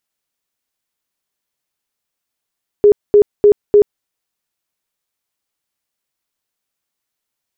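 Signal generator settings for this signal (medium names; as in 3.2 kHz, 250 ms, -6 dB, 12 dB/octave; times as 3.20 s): tone bursts 413 Hz, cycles 33, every 0.30 s, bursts 4, -4 dBFS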